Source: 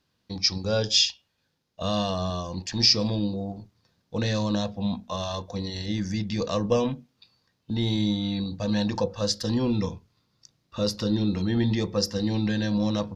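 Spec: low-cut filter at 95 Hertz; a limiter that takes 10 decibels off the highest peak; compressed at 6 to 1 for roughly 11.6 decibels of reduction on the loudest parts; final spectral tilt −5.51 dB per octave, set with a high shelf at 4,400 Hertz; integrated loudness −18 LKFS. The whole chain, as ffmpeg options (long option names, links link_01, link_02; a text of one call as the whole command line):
ffmpeg -i in.wav -af "highpass=95,highshelf=frequency=4400:gain=-7,acompressor=threshold=-31dB:ratio=6,volume=21dB,alimiter=limit=-8dB:level=0:latency=1" out.wav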